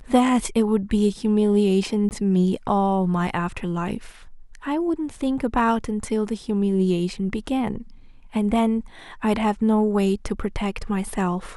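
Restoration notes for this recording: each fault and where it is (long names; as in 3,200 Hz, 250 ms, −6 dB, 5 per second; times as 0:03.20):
0:02.09–0:02.11: drop-out 19 ms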